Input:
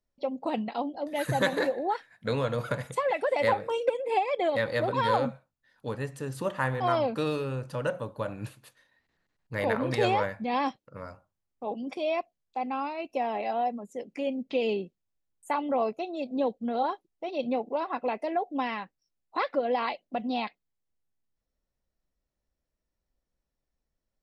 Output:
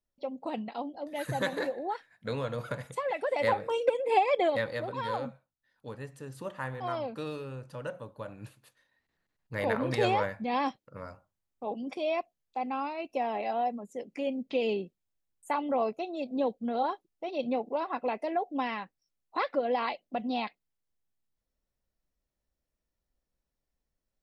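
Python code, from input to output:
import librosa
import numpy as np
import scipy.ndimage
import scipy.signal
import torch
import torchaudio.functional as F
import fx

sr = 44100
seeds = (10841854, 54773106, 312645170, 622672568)

y = fx.gain(x, sr, db=fx.line((3.01, -5.0), (4.34, 3.0), (4.84, -8.0), (8.36, -8.0), (9.76, -1.5)))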